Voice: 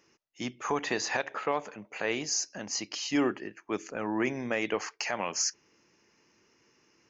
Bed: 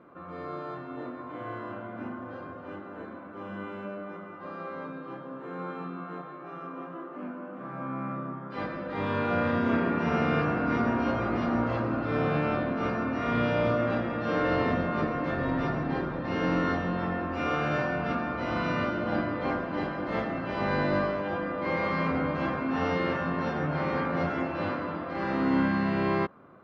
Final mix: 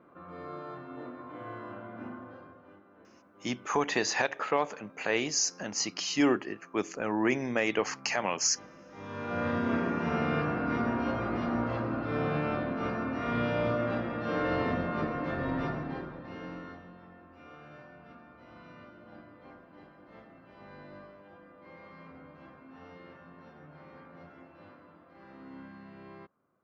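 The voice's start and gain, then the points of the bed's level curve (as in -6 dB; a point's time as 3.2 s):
3.05 s, +2.0 dB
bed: 2.15 s -4.5 dB
2.85 s -17 dB
8.88 s -17 dB
9.47 s -3.5 dB
15.64 s -3.5 dB
17.03 s -22.5 dB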